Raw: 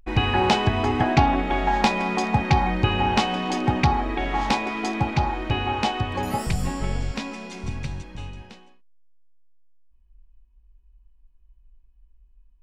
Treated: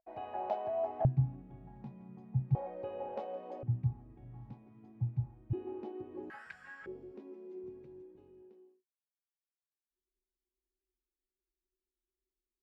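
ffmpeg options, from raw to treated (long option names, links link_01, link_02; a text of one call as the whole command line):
ffmpeg -i in.wav -af "asetnsamples=nb_out_samples=441:pad=0,asendcmd='1.05 bandpass f 130;2.55 bandpass f 540;3.63 bandpass f 120;5.53 bandpass f 350;6.3 bandpass f 1600;6.86 bandpass f 370',bandpass=frequency=650:width_type=q:width=14:csg=0" out.wav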